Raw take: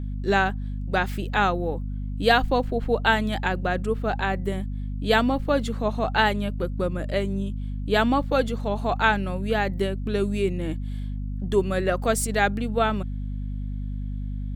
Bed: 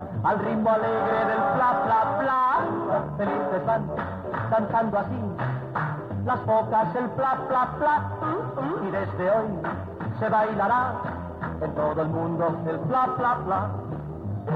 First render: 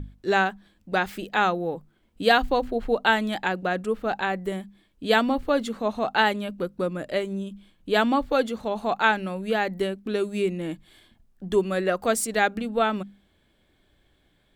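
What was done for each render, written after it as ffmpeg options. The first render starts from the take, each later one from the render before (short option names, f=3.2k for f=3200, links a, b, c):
-af "bandreject=f=50:t=h:w=6,bandreject=f=100:t=h:w=6,bandreject=f=150:t=h:w=6,bandreject=f=200:t=h:w=6,bandreject=f=250:t=h:w=6"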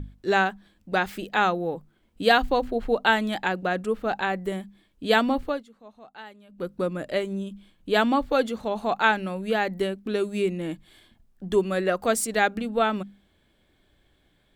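-filter_complex "[0:a]asplit=3[a][b][c];[a]atrim=end=5.63,asetpts=PTS-STARTPTS,afade=t=out:st=5.42:d=0.21:silence=0.0794328[d];[b]atrim=start=5.63:end=6.49,asetpts=PTS-STARTPTS,volume=-22dB[e];[c]atrim=start=6.49,asetpts=PTS-STARTPTS,afade=t=in:d=0.21:silence=0.0794328[f];[d][e][f]concat=n=3:v=0:a=1"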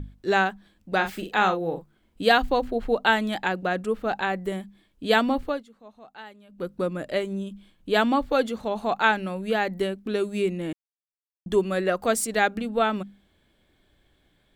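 -filter_complex "[0:a]asettb=1/sr,asplit=3[a][b][c];[a]atrim=end=0.954[d];[b]atrim=start=0.95:end=2.22,asetpts=PTS-STARTPTS,afade=t=in:d=0.004:c=qsin,afade=t=out:st=1.266:d=0.004:c=qsin,asplit=2[e][f];[f]adelay=42,volume=-8dB[g];[e][g]amix=inputs=2:normalize=0,atrim=end_sample=56007[h];[c]atrim=start=2.216[i];[d][h]acrossfade=d=0.004:c1=hsin:c2=qsin[j];[j][i]acrossfade=d=0.004:c1=qsin:c2=hsin,asplit=3[k][l][m];[k]atrim=end=10.73,asetpts=PTS-STARTPTS,afade=t=out:st=10.726:d=0.004:c=hsin[n];[l]atrim=start=10.73:end=11.46,asetpts=PTS-STARTPTS,volume=0[o];[m]atrim=start=11.46,asetpts=PTS-STARTPTS,afade=t=in:d=0.004:c=hsin[p];[n][o][p]concat=n=3:v=0:a=1"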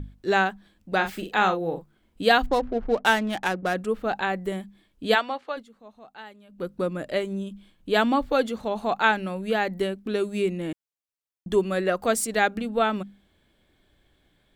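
-filter_complex "[0:a]asettb=1/sr,asplit=3[a][b][c];[a]atrim=end=2.464[d];[b]atrim=start=2.46:end=3.74,asetpts=PTS-STARTPTS,afade=t=in:d=0.004:c=qsin,afade=t=out:st=1.276:d=0.004:c=qsin,adynamicsmooth=sensitivity=7:basefreq=680[e];[c]atrim=start=3.736[f];[d][e]acrossfade=d=0.004:c1=hsin:c2=qsin[g];[g][f]acrossfade=d=0.004:c1=qsin:c2=hsin,asplit=3[h][i][j];[h]afade=t=out:st=5.14:d=0.02[k];[i]highpass=660,lowpass=5.6k,afade=t=in:st=5.14:d=0.02,afade=t=out:st=5.56:d=0.02[l];[j]afade=t=in:st=5.56:d=0.02[m];[k][l][m]amix=inputs=3:normalize=0"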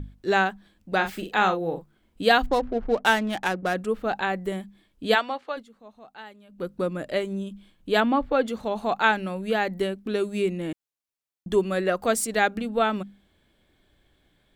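-filter_complex "[0:a]asettb=1/sr,asplit=3[a][b][c];[a]atrim=end=8.004[d];[b]atrim=start=8:end=8.48,asetpts=PTS-STARTPTS,afade=t=in:d=0.004:c=qsin,afade=t=out:st=0.476:d=0.004:c=qsin,bass=f=250:g=0,treble=f=4k:g=-15[e];[c]atrim=start=8.476[f];[d][e]acrossfade=d=0.004:c1=hsin:c2=qsin[g];[g][f]acrossfade=d=0.004:c1=qsin:c2=hsin"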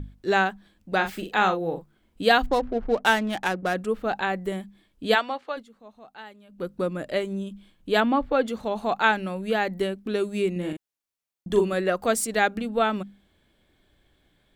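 -filter_complex "[0:a]asettb=1/sr,asplit=3[a][b][c];[a]atrim=end=10.524[d];[b]atrim=start=10.52:end=11.73,asetpts=PTS-STARTPTS,afade=t=in:d=0.004:c=qsin,afade=t=out:st=1.206:d=0.004:c=qsin,asplit=2[e][f];[f]adelay=39,volume=-5dB[g];[e][g]amix=inputs=2:normalize=0,atrim=end_sample=53361[h];[c]atrim=start=11.726[i];[d][h]acrossfade=d=0.004:c1=hsin:c2=qsin[j];[j][i]acrossfade=d=0.004:c1=qsin:c2=hsin"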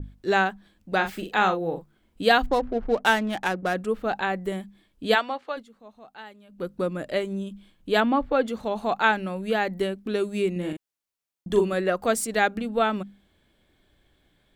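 -af "adynamicequalizer=threshold=0.02:dfrequency=2400:dqfactor=0.7:tfrequency=2400:tqfactor=0.7:attack=5:release=100:ratio=0.375:range=2:mode=cutabove:tftype=highshelf"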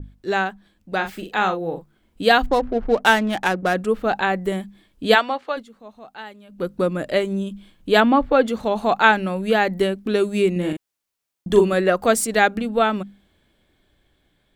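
-af "dynaudnorm=f=490:g=9:m=11.5dB"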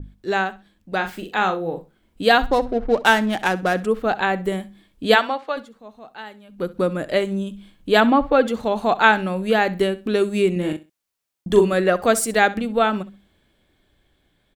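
-af "aecho=1:1:65|130:0.126|0.029"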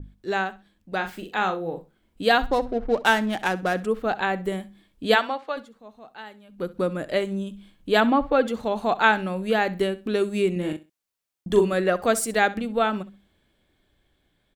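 -af "volume=-4dB"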